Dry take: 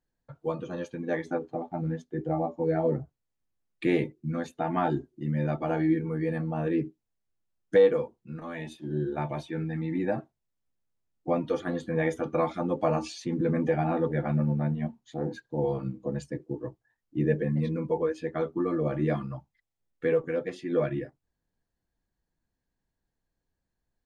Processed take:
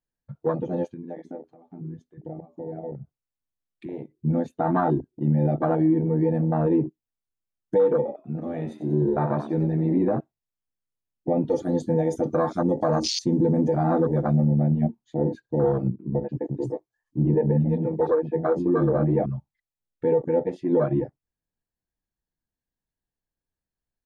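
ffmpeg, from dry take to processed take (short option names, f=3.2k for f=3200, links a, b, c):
-filter_complex "[0:a]asettb=1/sr,asplit=3[a][b][c];[a]atrim=end=0.864[d];[b]atrim=start=0.86:end=4.18,asetpts=PTS-STARTPTS,afade=t=in:d=0.004:c=qsin,afade=t=out:st=3.316:d=0.004:c=qsin,acompressor=threshold=-44dB:ratio=3:attack=3.2:release=140:knee=1:detection=peak[e];[c]atrim=start=4.176[f];[d][e]acrossfade=d=0.004:c1=hsin:c2=qsin[g];[g][f]acrossfade=d=0.004:c1=qsin:c2=hsin,asettb=1/sr,asplit=3[h][i][j];[h]atrim=end=7.964[k];[i]atrim=start=7.96:end=10.17,asetpts=PTS-STARTPTS,afade=t=in:d=0.004:c=qsin,afade=t=out:st=2.206:d=0.004:c=qsin,asplit=6[l][m][n][o][p][q];[m]adelay=93,afreqshift=71,volume=-10.5dB[r];[n]adelay=186,afreqshift=142,volume=-16.7dB[s];[o]adelay=279,afreqshift=213,volume=-22.9dB[t];[p]adelay=372,afreqshift=284,volume=-29.1dB[u];[q]adelay=465,afreqshift=355,volume=-35.3dB[v];[l][r][s][t][u][v]amix=inputs=6:normalize=0,atrim=end_sample=97461[w];[j]atrim=start=10.166[x];[k][w]acrossfade=d=0.004:c1=hsin:c2=qsin[y];[y][x]acrossfade=d=0.004:c1=qsin:c2=hsin,asettb=1/sr,asplit=3[z][aa][ab];[z]atrim=end=11.514[ac];[aa]atrim=start=11.51:end=14.42,asetpts=PTS-STARTPTS,afade=t=in:d=0.004:c=qsin,afade=t=out:st=2.906:d=0.004:c=qsin,highshelf=f=3.8k:t=q:w=1.5:g=12[ad];[ab]atrim=start=14.416[ae];[ac][ad]acrossfade=d=0.004:c1=hsin:c2=qsin[af];[af][ae]acrossfade=d=0.004:c1=qsin:c2=hsin,asettb=1/sr,asplit=3[ag][ah][ai];[ag]atrim=end=15.904[aj];[ah]atrim=start=15.9:end=19.26,asetpts=PTS-STARTPTS,afade=t=in:d=0.004:c=qsin,afade=t=out:st=3.356:d=0.004:c=qsin,acrossover=split=270|3000[ak][al][am];[al]adelay=90[an];[am]adelay=420[ao];[ak][an][ao]amix=inputs=3:normalize=0,atrim=end_sample=148176[ap];[ai]atrim=start=19.256[aq];[aj][ap]acrossfade=d=0.004:c1=hsin:c2=qsin[ar];[ar][aq]acrossfade=d=0.004:c1=qsin:c2=hsin,alimiter=limit=-21dB:level=0:latency=1:release=73,afwtdn=0.0224,volume=8.5dB"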